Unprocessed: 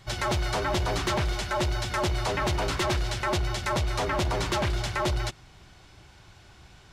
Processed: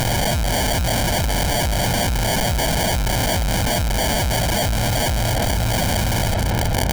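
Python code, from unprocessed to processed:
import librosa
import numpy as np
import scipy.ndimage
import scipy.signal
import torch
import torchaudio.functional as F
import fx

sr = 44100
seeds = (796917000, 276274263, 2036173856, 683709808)

p1 = x + fx.echo_feedback(x, sr, ms=464, feedback_pct=50, wet_db=-20.0, dry=0)
p2 = fx.chopper(p1, sr, hz=0.71, depth_pct=65, duty_pct=50)
p3 = fx.high_shelf(p2, sr, hz=5300.0, db=10.0)
p4 = fx.rider(p3, sr, range_db=4, speed_s=0.5)
p5 = p3 + F.gain(torch.from_numpy(p4), 0.5).numpy()
p6 = fx.fuzz(p5, sr, gain_db=46.0, gate_db=-48.0)
p7 = fx.sample_hold(p6, sr, seeds[0], rate_hz=1300.0, jitter_pct=0)
p8 = fx.echo_filtered(p7, sr, ms=393, feedback_pct=30, hz=1200.0, wet_db=-7.5)
p9 = fx.clip_asym(p8, sr, top_db=-25.0, bottom_db=-15.0)
p10 = fx.high_shelf(p9, sr, hz=2500.0, db=10.0)
p11 = p10 + 0.59 * np.pad(p10, (int(1.3 * sr / 1000.0), 0))[:len(p10)]
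p12 = fx.env_flatten(p11, sr, amount_pct=100)
y = F.gain(torch.from_numpy(p12), -4.0).numpy()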